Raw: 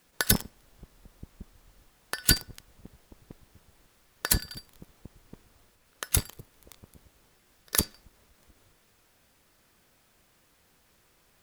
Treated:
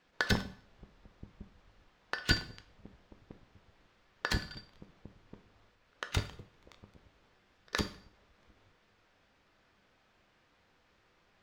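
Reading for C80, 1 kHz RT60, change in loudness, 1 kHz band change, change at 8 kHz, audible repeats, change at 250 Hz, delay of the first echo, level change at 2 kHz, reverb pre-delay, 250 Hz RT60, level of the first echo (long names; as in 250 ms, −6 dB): 18.0 dB, 0.55 s, −8.5 dB, −1.0 dB, −18.5 dB, no echo audible, −3.5 dB, no echo audible, −1.0 dB, 5 ms, 0.50 s, no echo audible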